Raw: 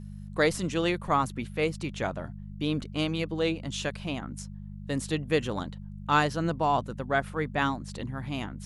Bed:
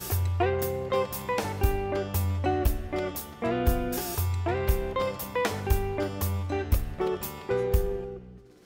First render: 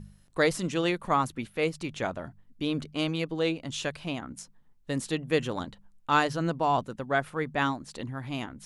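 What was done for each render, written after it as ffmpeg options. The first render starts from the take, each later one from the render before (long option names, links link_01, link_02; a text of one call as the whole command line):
ffmpeg -i in.wav -af "bandreject=frequency=50:width_type=h:width=4,bandreject=frequency=100:width_type=h:width=4,bandreject=frequency=150:width_type=h:width=4,bandreject=frequency=200:width_type=h:width=4" out.wav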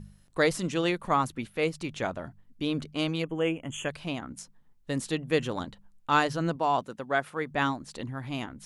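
ffmpeg -i in.wav -filter_complex "[0:a]asplit=3[link_01][link_02][link_03];[link_01]afade=type=out:start_time=3.22:duration=0.02[link_04];[link_02]asuperstop=centerf=4600:order=20:qfactor=1.6,afade=type=in:start_time=3.22:duration=0.02,afade=type=out:start_time=3.88:duration=0.02[link_05];[link_03]afade=type=in:start_time=3.88:duration=0.02[link_06];[link_04][link_05][link_06]amix=inputs=3:normalize=0,asettb=1/sr,asplit=3[link_07][link_08][link_09];[link_07]atrim=end=6.564[link_10];[link_08]atrim=start=6.56:end=7.51,asetpts=PTS-STARTPTS,afade=type=in:duration=0.004:curve=qsin,afade=type=out:start_time=0.946:duration=0.004:curve=qsin,highpass=frequency=240:poles=1[link_11];[link_09]atrim=start=7.506[link_12];[link_10][link_11]acrossfade=duration=0.004:curve1=hsin:curve2=qsin[link_13];[link_13][link_12]acrossfade=duration=0.004:curve1=qsin:curve2=hsin" out.wav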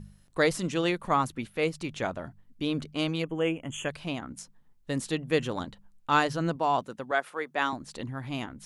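ffmpeg -i in.wav -filter_complex "[0:a]asettb=1/sr,asplit=3[link_01][link_02][link_03];[link_01]atrim=end=7.114[link_04];[link_02]atrim=start=7.11:end=7.73,asetpts=PTS-STARTPTS,afade=type=in:duration=0.004:curve=qsin,afade=type=out:start_time=0.616:duration=0.004:curve=qsin,highpass=370[link_05];[link_03]atrim=start=7.726[link_06];[link_04][link_05]acrossfade=duration=0.004:curve1=hsin:curve2=qsin[link_07];[link_07][link_06]acrossfade=duration=0.004:curve1=qsin:curve2=hsin" out.wav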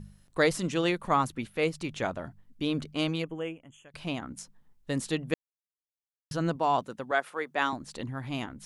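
ffmpeg -i in.wav -filter_complex "[0:a]asplit=4[link_01][link_02][link_03][link_04];[link_01]atrim=end=3.94,asetpts=PTS-STARTPTS,afade=type=out:start_time=3.13:duration=0.81:curve=qua:silence=0.0707946[link_05];[link_02]atrim=start=3.94:end=5.34,asetpts=PTS-STARTPTS,afade=type=in:duration=0.004:curve=hsin:silence=0.0707946,afade=type=out:start_time=1.396:duration=0.004:curve=hsin[link_06];[link_03]atrim=start=5.34:end=6.31,asetpts=PTS-STARTPTS,volume=0[link_07];[link_04]atrim=start=6.31,asetpts=PTS-STARTPTS,afade=type=in:duration=0.004:curve=hsin[link_08];[link_05][link_06][link_07][link_08]concat=n=4:v=0:a=1" out.wav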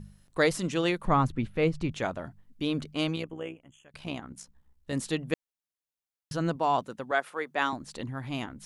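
ffmpeg -i in.wav -filter_complex "[0:a]asettb=1/sr,asplit=3[link_01][link_02][link_03];[link_01]atrim=end=1.054[link_04];[link_02]atrim=start=1.05:end=1.92,asetpts=PTS-STARTPTS,afade=type=in:duration=0.004:curve=qsin,afade=type=out:start_time=0.866:duration=0.004:curve=qsin,aemphasis=mode=reproduction:type=bsi[link_05];[link_03]atrim=start=1.916[link_06];[link_04][link_05]acrossfade=duration=0.004:curve1=hsin:curve2=qsin[link_07];[link_07][link_06]acrossfade=duration=0.004:curve1=qsin:curve2=hsin,asplit=3[link_08][link_09][link_10];[link_08]afade=type=out:start_time=3.15:duration=0.02[link_11];[link_09]tremolo=f=64:d=0.621,afade=type=in:start_time=3.15:duration=0.02,afade=type=out:start_time=4.92:duration=0.02[link_12];[link_10]afade=type=in:start_time=4.92:duration=0.02[link_13];[link_11][link_12][link_13]amix=inputs=3:normalize=0" out.wav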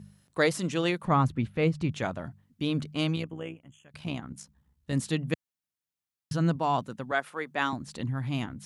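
ffmpeg -i in.wav -af "highpass=100,asubboost=boost=3:cutoff=220" out.wav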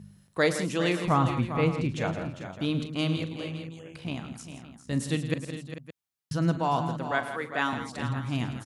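ffmpeg -i in.wav -af "aecho=1:1:40|109|166|401|444|566:0.211|0.2|0.266|0.282|0.188|0.15" out.wav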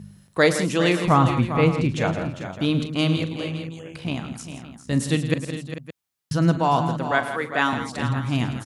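ffmpeg -i in.wav -af "volume=6.5dB" out.wav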